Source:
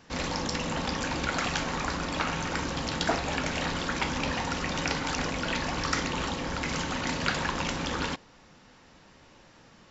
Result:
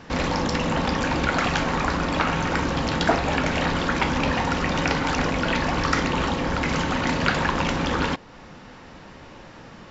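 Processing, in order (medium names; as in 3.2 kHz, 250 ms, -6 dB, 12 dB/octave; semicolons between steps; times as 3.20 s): treble shelf 4.4 kHz -12 dB; in parallel at +0.5 dB: compression, threshold -43 dBFS, peak gain reduction 19 dB; on the sum: trim +6.5 dB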